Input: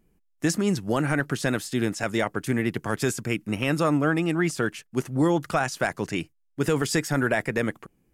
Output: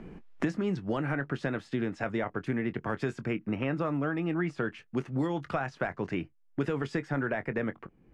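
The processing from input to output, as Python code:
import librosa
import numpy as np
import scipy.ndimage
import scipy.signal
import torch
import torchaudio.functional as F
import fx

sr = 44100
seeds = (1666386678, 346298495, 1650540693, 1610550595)

y = scipy.signal.sosfilt(scipy.signal.butter(2, 2300.0, 'lowpass', fs=sr, output='sos'), x)
y = fx.doubler(y, sr, ms=22.0, db=-14)
y = fx.band_squash(y, sr, depth_pct=100)
y = y * 10.0 ** (-7.0 / 20.0)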